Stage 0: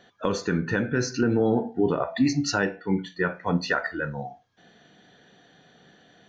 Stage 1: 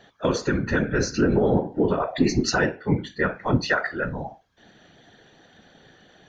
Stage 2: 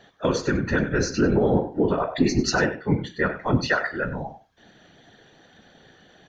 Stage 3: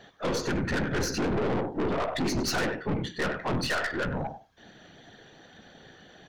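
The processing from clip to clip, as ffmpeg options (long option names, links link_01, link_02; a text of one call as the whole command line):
ffmpeg -i in.wav -af "afftfilt=real='hypot(re,im)*cos(2*PI*random(0))':imag='hypot(re,im)*sin(2*PI*random(1))':win_size=512:overlap=0.75,volume=8.5dB" out.wav
ffmpeg -i in.wav -af "aecho=1:1:96:0.2" out.wav
ffmpeg -i in.wav -af "aeval=exprs='(tanh(25.1*val(0)+0.4)-tanh(0.4))/25.1':channel_layout=same,volume=2.5dB" out.wav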